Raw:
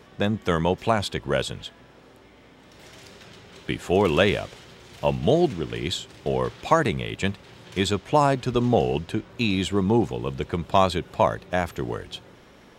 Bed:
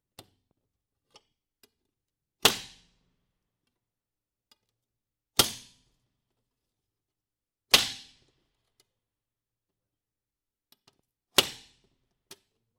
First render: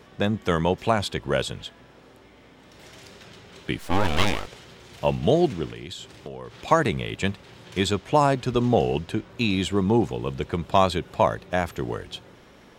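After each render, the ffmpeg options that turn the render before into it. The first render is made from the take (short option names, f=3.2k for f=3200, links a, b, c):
-filter_complex "[0:a]asettb=1/sr,asplit=3[a][b][c];[a]atrim=end=3.794[d];[b]atrim=start=3.79:end=4.47,asetpts=PTS-STARTPTS,afade=t=in:d=0.004:c=qsin,afade=t=out:st=0.676:d=0.004:c=qsin,aeval=exprs='abs(val(0))':c=same[e];[c]atrim=start=4.466[f];[d][e]acrossfade=d=0.004:c1=hsin:c2=qsin[g];[g][f]acrossfade=d=0.004:c1=qsin:c2=hsin,asettb=1/sr,asplit=3[h][i][j];[h]atrim=end=5.684[k];[i]atrim=start=5.68:end=6.68,asetpts=PTS-STARTPTS,afade=t=in:d=0.004:c=qsin,afade=t=out:st=0.996:d=0.004:c=qsin,acompressor=threshold=-33dB:ratio=5:attack=3.2:release=140:knee=1:detection=peak[l];[j]atrim=start=6.676[m];[k][l]acrossfade=d=0.004:c1=hsin:c2=qsin[n];[n][m]acrossfade=d=0.004:c1=qsin:c2=hsin"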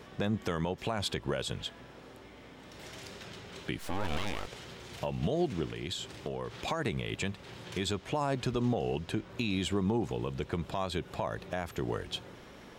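-af "acompressor=threshold=-20dB:ratio=6,alimiter=limit=-20.5dB:level=0:latency=1:release=241"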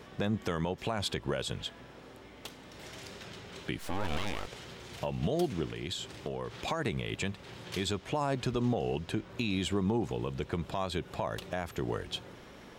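-filter_complex "[1:a]volume=-25dB[a];[0:a][a]amix=inputs=2:normalize=0"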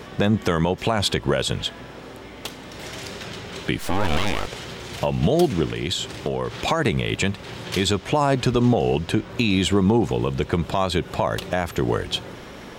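-af "volume=12dB"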